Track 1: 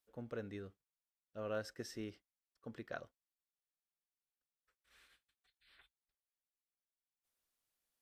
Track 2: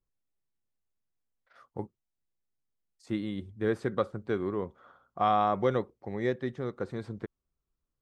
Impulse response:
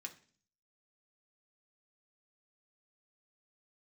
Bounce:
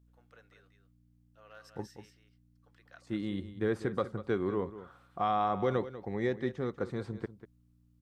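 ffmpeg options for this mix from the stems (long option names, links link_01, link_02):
-filter_complex "[0:a]highpass=900,aeval=exprs='val(0)+0.00141*(sin(2*PI*60*n/s)+sin(2*PI*2*60*n/s)/2+sin(2*PI*3*60*n/s)/3+sin(2*PI*4*60*n/s)/4+sin(2*PI*5*60*n/s)/5)':channel_layout=same,volume=-6.5dB,asplit=3[link_01][link_02][link_03];[link_02]volume=-7.5dB[link_04];[1:a]alimiter=limit=-19dB:level=0:latency=1:release=57,volume=0dB,asplit=2[link_05][link_06];[link_06]volume=-14dB[link_07];[link_03]apad=whole_len=353669[link_08];[link_05][link_08]sidechaincompress=threshold=-57dB:ratio=8:attack=34:release=441[link_09];[link_04][link_07]amix=inputs=2:normalize=0,aecho=0:1:193:1[link_10];[link_01][link_09][link_10]amix=inputs=3:normalize=0,bandreject=frequency=600:width=13"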